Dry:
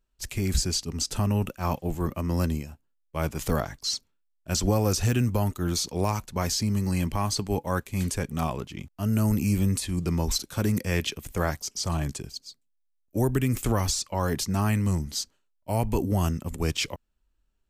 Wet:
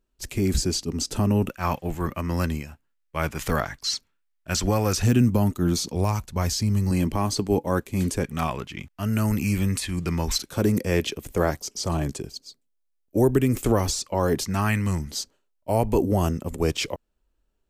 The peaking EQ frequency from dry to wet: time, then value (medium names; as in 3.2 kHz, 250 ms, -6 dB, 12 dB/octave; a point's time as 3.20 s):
peaking EQ +8 dB 1.7 oct
320 Hz
from 1.49 s 1.8 kHz
from 5.02 s 230 Hz
from 5.95 s 63 Hz
from 6.91 s 330 Hz
from 8.24 s 1.9 kHz
from 10.49 s 410 Hz
from 14.45 s 1.9 kHz
from 15.10 s 480 Hz